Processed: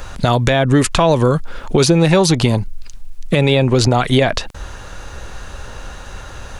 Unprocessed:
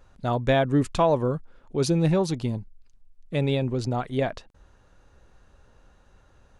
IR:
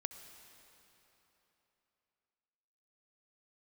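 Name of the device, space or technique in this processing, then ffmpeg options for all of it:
mastering chain: -filter_complex "[0:a]equalizer=f=250:t=o:w=2:g=-3.5,acrossover=split=380|2100[a][b][c];[a]acompressor=threshold=-34dB:ratio=4[d];[b]acompressor=threshold=-36dB:ratio=4[e];[c]acompressor=threshold=-46dB:ratio=4[f];[d][e][f]amix=inputs=3:normalize=0,acompressor=threshold=-37dB:ratio=2,tiltshelf=f=1.4k:g=-3,alimiter=level_in=29dB:limit=-1dB:release=50:level=0:latency=1,volume=-1dB"

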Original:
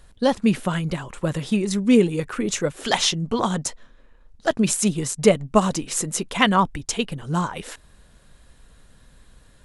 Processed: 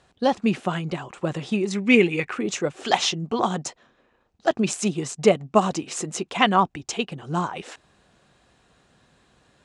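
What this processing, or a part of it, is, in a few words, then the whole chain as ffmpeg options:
car door speaker: -filter_complex "[0:a]highpass=110,equalizer=f=360:t=q:w=4:g=6,equalizer=f=750:t=q:w=4:g=8,equalizer=f=1.2k:t=q:w=4:g=3,equalizer=f=2.6k:t=q:w=4:g=4,lowpass=f=7.8k:w=0.5412,lowpass=f=7.8k:w=1.3066,asettb=1/sr,asplit=3[a][b][c];[a]atrim=end=1.754[d];[b]atrim=start=1.75:end=2.33,asetpts=PTS-STARTPTS,afade=t=in:d=0.004:c=qsin,afade=t=out:st=0.576:d=0.004:c=qsin,equalizer=f=2.2k:t=o:w=0.74:g=15[e];[c]atrim=start=2.326[f];[d][e]acrossfade=d=0.004:c1=hsin:c2=qsin[g];[g][f]acrossfade=d=0.004:c1=qsin:c2=hsin,volume=-3.5dB"

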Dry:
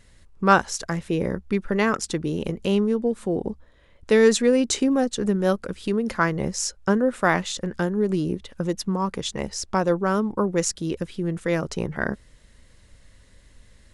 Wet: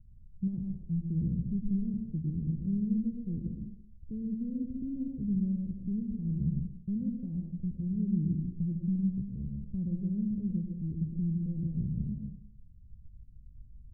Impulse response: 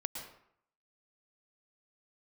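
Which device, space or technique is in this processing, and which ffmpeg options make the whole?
club heard from the street: -filter_complex "[0:a]alimiter=limit=-13dB:level=0:latency=1,lowpass=f=170:w=0.5412,lowpass=f=170:w=1.3066[a];[1:a]atrim=start_sample=2205[b];[a][b]afir=irnorm=-1:irlink=0,volume=1.5dB"

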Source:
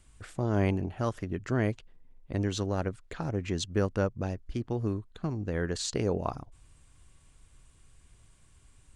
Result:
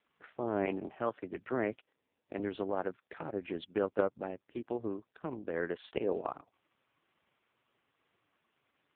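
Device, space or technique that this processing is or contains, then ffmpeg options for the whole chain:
telephone: -filter_complex "[0:a]asettb=1/sr,asplit=3[a][b][c];[a]atrim=end=0.654[d];[b]atrim=start=0.65:end=2.4,asetpts=PTS-STARTPTS,afade=t=in:d=0.004:c=qsin,afade=t=out:st=1.746:d=0.004:c=qsin,highpass=f=91:w=0.5412,highpass=f=91:w=1.3066[e];[c]atrim=start=2.396[f];[d][e]acrossfade=d=0.004:c1=hsin:c2=qsin[g];[g][f]acrossfade=d=0.004:c1=qsin:c2=hsin,highpass=330,lowpass=3.1k" -ar 8000 -c:a libopencore_amrnb -b:a 4750

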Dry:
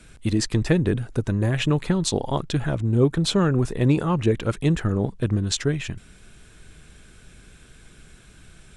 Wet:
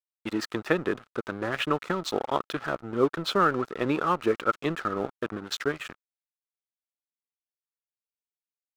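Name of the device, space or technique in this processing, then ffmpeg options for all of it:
pocket radio on a weak battery: -af "highpass=350,lowpass=3.7k,aeval=exprs='sgn(val(0))*max(abs(val(0))-0.00944,0)':c=same,equalizer=f=1.3k:t=o:w=0.36:g=12"

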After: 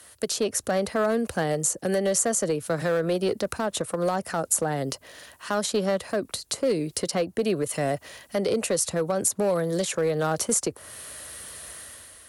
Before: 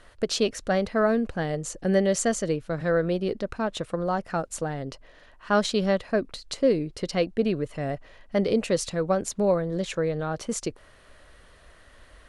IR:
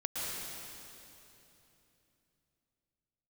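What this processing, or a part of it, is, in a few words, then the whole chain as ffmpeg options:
FM broadcast chain: -filter_complex "[0:a]highpass=f=71:w=0.5412,highpass=f=71:w=1.3066,dynaudnorm=f=100:g=9:m=9dB,acrossover=split=170|340|1600[a][b][c][d];[a]acompressor=threshold=-34dB:ratio=4[e];[b]acompressor=threshold=-32dB:ratio=4[f];[c]acompressor=threshold=-17dB:ratio=4[g];[d]acompressor=threshold=-41dB:ratio=4[h];[e][f][g][h]amix=inputs=4:normalize=0,aemphasis=mode=production:type=50fm,alimiter=limit=-13.5dB:level=0:latency=1:release=93,asoftclip=type=hard:threshold=-15.5dB,lowpass=f=15k:w=0.5412,lowpass=f=15k:w=1.3066,aemphasis=mode=production:type=50fm,volume=-1.5dB"

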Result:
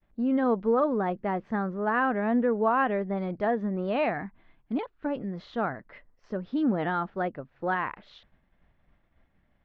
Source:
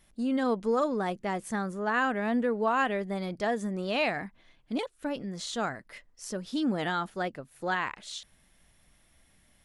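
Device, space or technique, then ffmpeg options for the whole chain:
hearing-loss simulation: -filter_complex "[0:a]lowpass=1.6k,lowpass=f=5.2k:w=0.5412,lowpass=f=5.2k:w=1.3066,agate=range=-33dB:threshold=-59dB:ratio=3:detection=peak,asettb=1/sr,asplit=3[a][b][c];[a]atrim=end=4.144[d];[b]atrim=start=4.14:end=5.06,asetpts=PTS-STARTPTS,afade=t=in:d=0.004:c=qsin,afade=t=out:st=0.916:d=0.004:c=qsin,equalizer=f=530:w=3.8:g=-9[e];[c]atrim=start=5.056[f];[d][e]acrossfade=d=0.004:c1=hsin:c2=qsin[g];[g][f]acrossfade=d=0.004:c1=qsin:c2=hsin,volume=3dB"

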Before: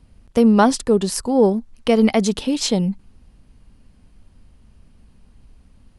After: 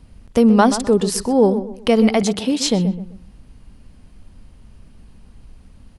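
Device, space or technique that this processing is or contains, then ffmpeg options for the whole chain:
parallel compression: -filter_complex "[0:a]asettb=1/sr,asplit=3[a][b][c];[a]atrim=end=2.224[d];[b]atrim=start=2.22:end=2.67,asetpts=PTS-STARTPTS,afade=t=in:d=0.004:c=qsin,afade=t=out:st=0.446:d=0.004:c=qsin,highpass=91[e];[c]atrim=start=2.666[f];[d][e]acrossfade=d=0.004:c1=hsin:c2=qsin[g];[g][f]acrossfade=d=0.004:c1=qsin:c2=hsin,asplit=2[h][i];[i]acompressor=threshold=-32dB:ratio=6,volume=-1.5dB[j];[h][j]amix=inputs=2:normalize=0,asplit=2[k][l];[l]adelay=128,lowpass=f=2k:p=1,volume=-11.5dB,asplit=2[m][n];[n]adelay=128,lowpass=f=2k:p=1,volume=0.33,asplit=2[o][p];[p]adelay=128,lowpass=f=2k:p=1,volume=0.33[q];[k][m][o][q]amix=inputs=4:normalize=0"

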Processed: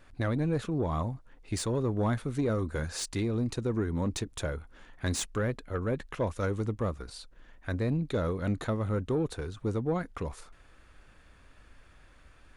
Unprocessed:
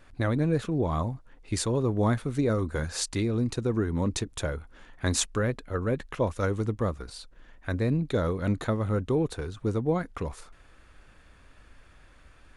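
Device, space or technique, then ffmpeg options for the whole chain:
saturation between pre-emphasis and de-emphasis: -af "highshelf=f=3.6k:g=11,asoftclip=type=tanh:threshold=-18dB,highshelf=f=3.6k:g=-11,volume=-2dB"

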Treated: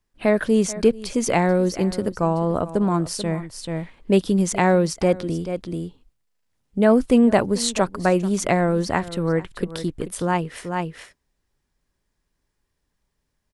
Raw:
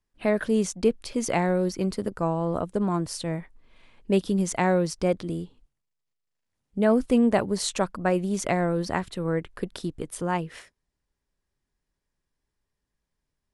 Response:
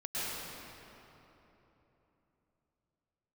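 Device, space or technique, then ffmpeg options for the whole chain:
ducked delay: -filter_complex "[0:a]asplit=3[a][b][c];[b]adelay=436,volume=-2.5dB[d];[c]apad=whole_len=615985[e];[d][e]sidechaincompress=threshold=-38dB:ratio=6:attack=7.9:release=342[f];[a][f]amix=inputs=2:normalize=0,volume=5dB"

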